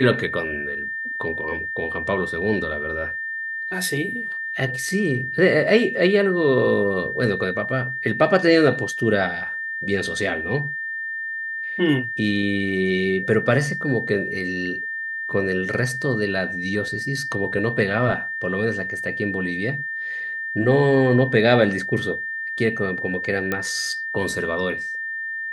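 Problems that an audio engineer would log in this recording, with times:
whine 1.8 kHz -26 dBFS
23.52 s: pop -10 dBFS

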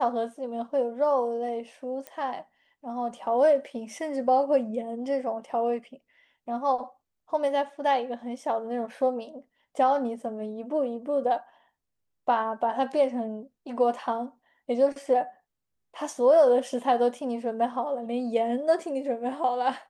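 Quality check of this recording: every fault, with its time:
2.07 s: pop -21 dBFS

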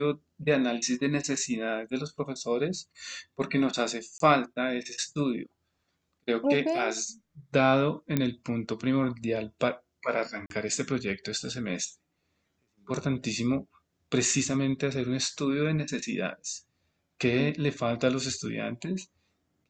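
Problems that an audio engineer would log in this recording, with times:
4.18–4.20 s: dropout 23 ms
8.17 s: pop -12 dBFS
10.46–10.50 s: dropout 42 ms

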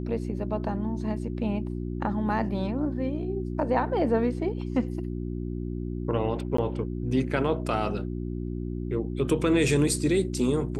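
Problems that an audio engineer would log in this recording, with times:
hum 60 Hz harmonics 6 -32 dBFS
6.57–6.58 s: dropout 14 ms

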